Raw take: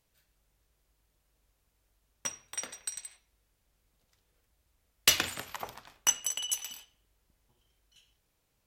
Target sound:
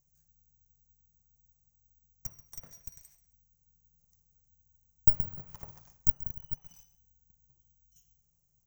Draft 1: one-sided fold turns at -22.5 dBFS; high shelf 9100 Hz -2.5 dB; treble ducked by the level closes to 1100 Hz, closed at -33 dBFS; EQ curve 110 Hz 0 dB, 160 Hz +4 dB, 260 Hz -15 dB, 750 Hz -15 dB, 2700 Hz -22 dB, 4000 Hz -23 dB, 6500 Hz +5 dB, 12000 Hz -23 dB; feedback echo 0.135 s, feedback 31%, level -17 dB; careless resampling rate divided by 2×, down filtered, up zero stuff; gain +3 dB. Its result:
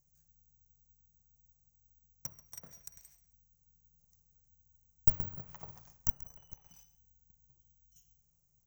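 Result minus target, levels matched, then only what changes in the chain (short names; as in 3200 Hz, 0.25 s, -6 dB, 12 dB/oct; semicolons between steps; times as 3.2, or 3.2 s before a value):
one-sided fold: distortion -8 dB
change: one-sided fold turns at -31 dBFS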